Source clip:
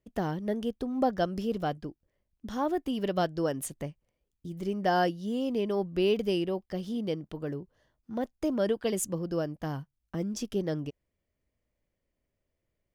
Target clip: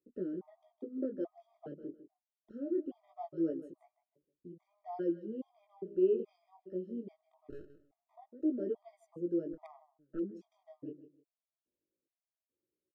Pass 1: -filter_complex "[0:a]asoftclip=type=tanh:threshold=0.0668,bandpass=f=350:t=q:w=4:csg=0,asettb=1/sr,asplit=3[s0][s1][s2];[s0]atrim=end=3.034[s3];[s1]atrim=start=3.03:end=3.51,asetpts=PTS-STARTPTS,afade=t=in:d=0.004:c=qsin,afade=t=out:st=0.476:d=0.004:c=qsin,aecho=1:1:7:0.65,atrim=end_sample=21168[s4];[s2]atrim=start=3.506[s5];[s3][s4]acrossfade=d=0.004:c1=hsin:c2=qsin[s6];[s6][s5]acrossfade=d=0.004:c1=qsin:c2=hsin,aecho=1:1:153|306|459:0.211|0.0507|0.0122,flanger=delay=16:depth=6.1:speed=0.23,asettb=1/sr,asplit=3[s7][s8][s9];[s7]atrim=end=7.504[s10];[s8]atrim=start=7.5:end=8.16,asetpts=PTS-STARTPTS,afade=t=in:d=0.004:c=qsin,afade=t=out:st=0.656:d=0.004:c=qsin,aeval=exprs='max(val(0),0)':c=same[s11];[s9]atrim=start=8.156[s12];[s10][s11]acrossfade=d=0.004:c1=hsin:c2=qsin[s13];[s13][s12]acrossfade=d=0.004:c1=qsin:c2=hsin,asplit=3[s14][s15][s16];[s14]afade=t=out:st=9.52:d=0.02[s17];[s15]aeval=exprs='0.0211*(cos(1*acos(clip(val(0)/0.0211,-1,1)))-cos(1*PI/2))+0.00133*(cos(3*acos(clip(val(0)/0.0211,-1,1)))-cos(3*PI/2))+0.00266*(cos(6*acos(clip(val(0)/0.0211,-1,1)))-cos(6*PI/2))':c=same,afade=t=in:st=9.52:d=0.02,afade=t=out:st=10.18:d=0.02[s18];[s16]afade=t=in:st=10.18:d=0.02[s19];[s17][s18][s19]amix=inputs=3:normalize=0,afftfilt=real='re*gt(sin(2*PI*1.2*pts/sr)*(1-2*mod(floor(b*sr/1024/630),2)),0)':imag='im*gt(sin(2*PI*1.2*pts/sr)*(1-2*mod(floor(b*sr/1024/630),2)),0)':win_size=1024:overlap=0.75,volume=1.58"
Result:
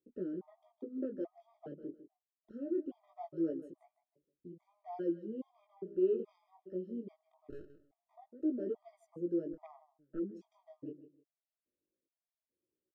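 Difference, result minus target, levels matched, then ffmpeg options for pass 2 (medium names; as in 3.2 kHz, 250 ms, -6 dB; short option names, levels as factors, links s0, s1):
saturation: distortion +8 dB
-filter_complex "[0:a]asoftclip=type=tanh:threshold=0.133,bandpass=f=350:t=q:w=4:csg=0,asettb=1/sr,asplit=3[s0][s1][s2];[s0]atrim=end=3.034[s3];[s1]atrim=start=3.03:end=3.51,asetpts=PTS-STARTPTS,afade=t=in:d=0.004:c=qsin,afade=t=out:st=0.476:d=0.004:c=qsin,aecho=1:1:7:0.65,atrim=end_sample=21168[s4];[s2]atrim=start=3.506[s5];[s3][s4]acrossfade=d=0.004:c1=hsin:c2=qsin[s6];[s6][s5]acrossfade=d=0.004:c1=qsin:c2=hsin,aecho=1:1:153|306|459:0.211|0.0507|0.0122,flanger=delay=16:depth=6.1:speed=0.23,asettb=1/sr,asplit=3[s7][s8][s9];[s7]atrim=end=7.504[s10];[s8]atrim=start=7.5:end=8.16,asetpts=PTS-STARTPTS,afade=t=in:d=0.004:c=qsin,afade=t=out:st=0.656:d=0.004:c=qsin,aeval=exprs='max(val(0),0)':c=same[s11];[s9]atrim=start=8.156[s12];[s10][s11]acrossfade=d=0.004:c1=hsin:c2=qsin[s13];[s13][s12]acrossfade=d=0.004:c1=qsin:c2=hsin,asplit=3[s14][s15][s16];[s14]afade=t=out:st=9.52:d=0.02[s17];[s15]aeval=exprs='0.0211*(cos(1*acos(clip(val(0)/0.0211,-1,1)))-cos(1*PI/2))+0.00133*(cos(3*acos(clip(val(0)/0.0211,-1,1)))-cos(3*PI/2))+0.00266*(cos(6*acos(clip(val(0)/0.0211,-1,1)))-cos(6*PI/2))':c=same,afade=t=in:st=9.52:d=0.02,afade=t=out:st=10.18:d=0.02[s18];[s16]afade=t=in:st=10.18:d=0.02[s19];[s17][s18][s19]amix=inputs=3:normalize=0,afftfilt=real='re*gt(sin(2*PI*1.2*pts/sr)*(1-2*mod(floor(b*sr/1024/630),2)),0)':imag='im*gt(sin(2*PI*1.2*pts/sr)*(1-2*mod(floor(b*sr/1024/630),2)),0)':win_size=1024:overlap=0.75,volume=1.58"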